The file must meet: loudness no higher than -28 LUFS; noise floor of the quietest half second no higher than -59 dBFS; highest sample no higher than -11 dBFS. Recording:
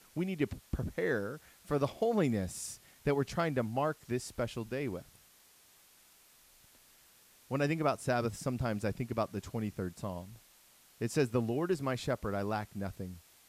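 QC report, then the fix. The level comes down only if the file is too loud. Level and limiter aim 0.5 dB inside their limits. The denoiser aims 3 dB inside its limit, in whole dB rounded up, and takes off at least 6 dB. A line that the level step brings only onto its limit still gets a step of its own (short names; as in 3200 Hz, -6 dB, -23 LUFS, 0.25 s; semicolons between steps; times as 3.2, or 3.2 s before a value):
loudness -35.0 LUFS: OK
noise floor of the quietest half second -63 dBFS: OK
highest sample -17.0 dBFS: OK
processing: none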